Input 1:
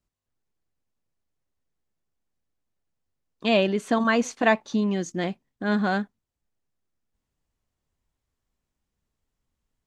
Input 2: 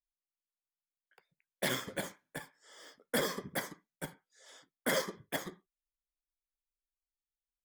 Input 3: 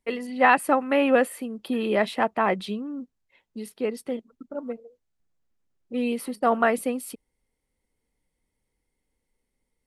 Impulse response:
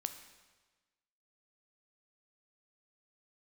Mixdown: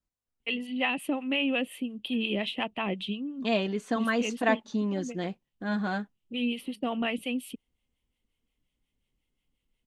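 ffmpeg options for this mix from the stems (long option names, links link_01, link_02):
-filter_complex "[0:a]flanger=delay=3.8:depth=2.6:regen=-44:speed=0.25:shape=triangular,volume=-2.5dB[link_01];[2:a]firequalizer=gain_entry='entry(260,0);entry(420,-7);entry(1500,-14);entry(2900,12);entry(4600,-9)':delay=0.05:min_phase=1,acrossover=split=590[link_02][link_03];[link_02]aeval=exprs='val(0)*(1-0.7/2+0.7/2*cos(2*PI*5.6*n/s))':channel_layout=same[link_04];[link_03]aeval=exprs='val(0)*(1-0.7/2-0.7/2*cos(2*PI*5.6*n/s))':channel_layout=same[link_05];[link_04][link_05]amix=inputs=2:normalize=0,adelay=400,volume=2dB,acompressor=threshold=-25dB:ratio=3,volume=0dB[link_06];[link_01][link_06]amix=inputs=2:normalize=0"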